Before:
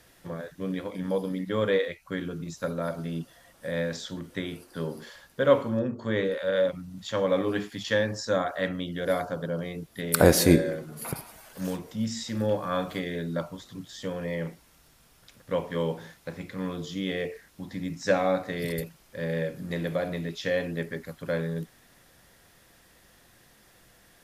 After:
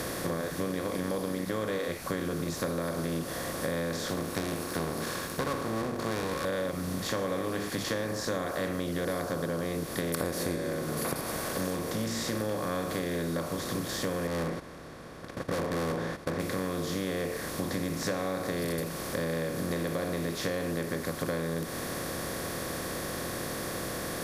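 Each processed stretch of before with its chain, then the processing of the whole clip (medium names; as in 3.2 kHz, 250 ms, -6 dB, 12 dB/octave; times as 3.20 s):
4.10–6.45 s: comb filter that takes the minimum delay 0.74 ms + high-pass 120 Hz 6 dB/octave
14.27–16.40 s: low-pass 1.9 kHz + overload inside the chain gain 34.5 dB + gate -57 dBFS, range -21 dB
whole clip: spectral levelling over time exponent 0.4; compression 6:1, threshold -24 dBFS; trim -4.5 dB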